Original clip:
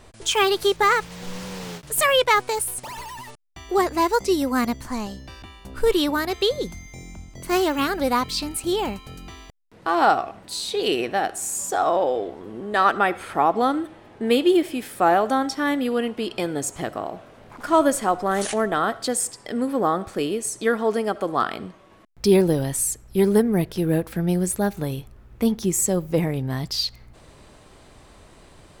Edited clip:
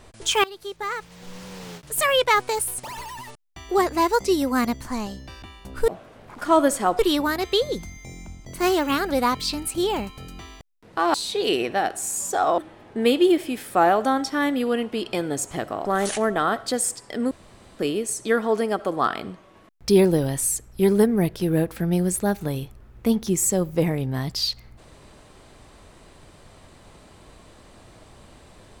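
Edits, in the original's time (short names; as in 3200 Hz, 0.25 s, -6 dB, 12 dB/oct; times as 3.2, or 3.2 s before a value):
0.44–2.51 fade in, from -21 dB
10.03–10.53 cut
11.97–13.83 cut
17.1–18.21 move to 5.88
19.67–20.15 room tone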